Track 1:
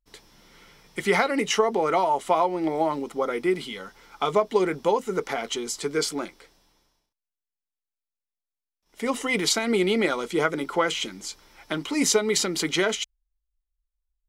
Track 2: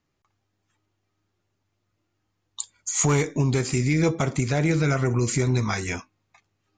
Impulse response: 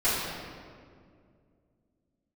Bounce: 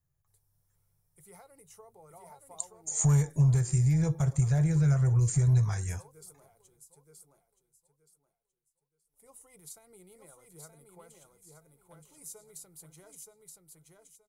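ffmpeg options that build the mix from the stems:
-filter_complex "[0:a]equalizer=frequency=3100:width_type=o:width=0.24:gain=-7,adelay=200,volume=-17dB,asplit=2[link_01][link_02];[link_02]volume=-4dB[link_03];[1:a]equalizer=frequency=1700:width_type=o:width=0.32:gain=12.5,volume=1dB[link_04];[link_03]aecho=0:1:924|1848|2772|3696:1|0.25|0.0625|0.0156[link_05];[link_01][link_04][link_05]amix=inputs=3:normalize=0,firequalizer=gain_entry='entry(150,0);entry(220,-25);entry(480,-14);entry(810,-13);entry(1800,-24);entry(5300,-15);entry(9500,6)':delay=0.05:min_phase=1"

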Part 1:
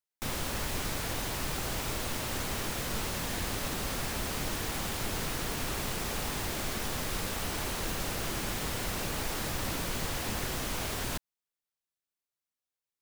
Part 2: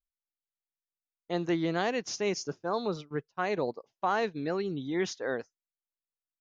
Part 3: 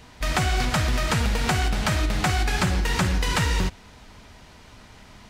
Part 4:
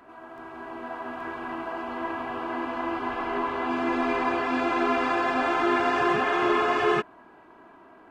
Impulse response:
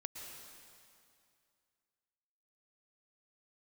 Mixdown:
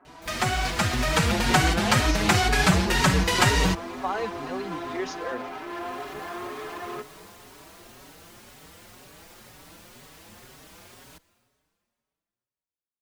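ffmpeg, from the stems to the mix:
-filter_complex "[0:a]volume=-12.5dB,asplit=2[link_01][link_02];[link_02]volume=-10dB[link_03];[1:a]volume=1.5dB,asplit=2[link_04][link_05];[2:a]dynaudnorm=framelen=230:gausssize=9:maxgain=5.5dB,adelay=50,volume=1.5dB[link_06];[3:a]lowpass=1500,asoftclip=type=tanh:threshold=-29dB,volume=-3.5dB,asplit=2[link_07][link_08];[link_08]volume=-5dB[link_09];[link_05]apad=whole_len=573944[link_10];[link_01][link_10]sidechaincompress=threshold=-42dB:ratio=8:attack=16:release=637[link_11];[4:a]atrim=start_sample=2205[link_12];[link_03][link_09]amix=inputs=2:normalize=0[link_13];[link_13][link_12]afir=irnorm=-1:irlink=0[link_14];[link_11][link_04][link_06][link_07][link_14]amix=inputs=5:normalize=0,lowshelf=frequency=67:gain=-11.5,asplit=2[link_15][link_16];[link_16]adelay=5,afreqshift=2[link_17];[link_15][link_17]amix=inputs=2:normalize=1"

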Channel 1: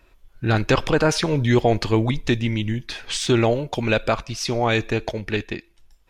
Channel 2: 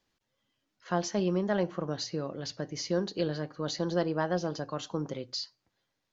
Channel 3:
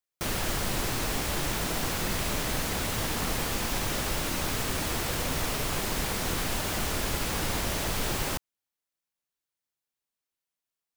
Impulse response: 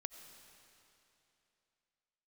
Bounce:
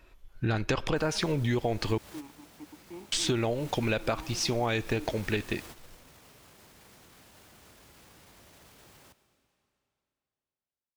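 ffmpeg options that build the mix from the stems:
-filter_complex "[0:a]volume=-1.5dB,asplit=3[link_01][link_02][link_03];[link_01]atrim=end=1.98,asetpts=PTS-STARTPTS,afade=type=out:start_time=1.976:duration=0.004:curve=hsin[link_04];[link_02]atrim=start=1.98:end=3.12,asetpts=PTS-STARTPTS,volume=0[link_05];[link_03]atrim=start=3.12,asetpts=PTS-STARTPTS,afade=type=in:duration=0.004:curve=hsin[link_06];[link_04][link_05][link_06]concat=n=3:v=0:a=1,asplit=2[link_07][link_08];[1:a]acrusher=bits=4:mix=0:aa=0.5,asplit=3[link_09][link_10][link_11];[link_09]bandpass=frequency=300:width_type=q:width=8,volume=0dB[link_12];[link_10]bandpass=frequency=870:width_type=q:width=8,volume=-6dB[link_13];[link_11]bandpass=frequency=2240:width_type=q:width=8,volume=-9dB[link_14];[link_12][link_13][link_14]amix=inputs=3:normalize=0,volume=-2.5dB[link_15];[2:a]highpass=63,alimiter=level_in=4dB:limit=-24dB:level=0:latency=1,volume=-4dB,adelay=750,volume=-11dB,asplit=2[link_16][link_17];[link_17]volume=-9dB[link_18];[link_08]apad=whole_len=516456[link_19];[link_16][link_19]sidechaingate=range=-15dB:threshold=-48dB:ratio=16:detection=peak[link_20];[3:a]atrim=start_sample=2205[link_21];[link_18][link_21]afir=irnorm=-1:irlink=0[link_22];[link_07][link_15][link_20][link_22]amix=inputs=4:normalize=0,acompressor=threshold=-25dB:ratio=6"

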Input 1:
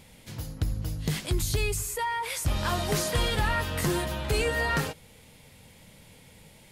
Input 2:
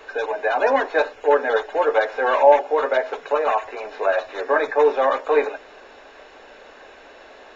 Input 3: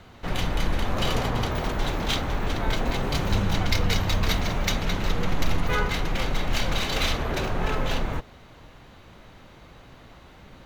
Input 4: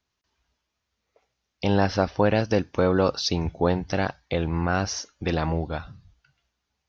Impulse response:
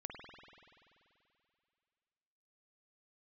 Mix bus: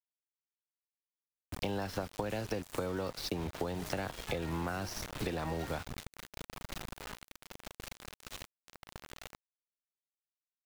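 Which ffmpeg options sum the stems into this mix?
-filter_complex "[0:a]aeval=exprs='val(0)+0.000891*(sin(2*PI*50*n/s)+sin(2*PI*2*50*n/s)/2+sin(2*PI*3*50*n/s)/3+sin(2*PI*4*50*n/s)/4+sin(2*PI*5*50*n/s)/5)':channel_layout=same,adelay=900,volume=-13.5dB[link_01];[2:a]adelay=1300,volume=-18dB[link_02];[3:a]highpass=frequency=49:width=0.5412,highpass=frequency=49:width=1.3066,dynaudnorm=framelen=130:gausssize=11:maxgain=4dB,volume=-2dB[link_03];[link_01][link_02][link_03]amix=inputs=3:normalize=0,acrossover=split=98|230|2700[link_04][link_05][link_06][link_07];[link_04]acompressor=threshold=-37dB:ratio=4[link_08];[link_05]acompressor=threshold=-35dB:ratio=4[link_09];[link_06]acompressor=threshold=-24dB:ratio=4[link_10];[link_07]acompressor=threshold=-40dB:ratio=4[link_11];[link_08][link_09][link_10][link_11]amix=inputs=4:normalize=0,aeval=exprs='val(0)*gte(abs(val(0)),0.0178)':channel_layout=same,acompressor=threshold=-33dB:ratio=6"

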